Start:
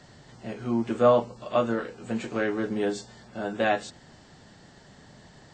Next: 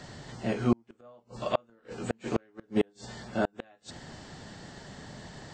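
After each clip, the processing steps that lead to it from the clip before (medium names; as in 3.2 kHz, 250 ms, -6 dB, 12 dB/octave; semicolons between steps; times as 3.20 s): inverted gate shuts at -19 dBFS, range -40 dB; trim +6 dB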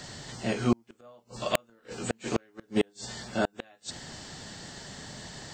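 treble shelf 2.9 kHz +11 dB; integer overflow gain 10.5 dB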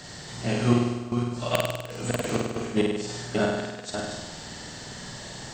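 chunks repeated in reverse 308 ms, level -6 dB; dynamic bell 130 Hz, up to +5 dB, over -48 dBFS, Q 2; flutter echo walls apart 8.6 m, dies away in 1.1 s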